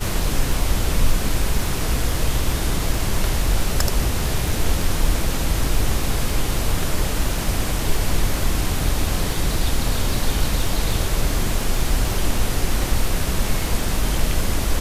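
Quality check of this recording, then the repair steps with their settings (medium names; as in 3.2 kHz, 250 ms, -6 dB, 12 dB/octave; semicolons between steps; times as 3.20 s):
crackle 20 per s -25 dBFS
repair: de-click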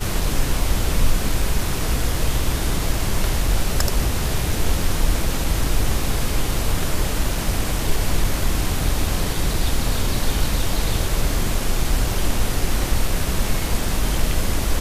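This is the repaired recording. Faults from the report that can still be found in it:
nothing left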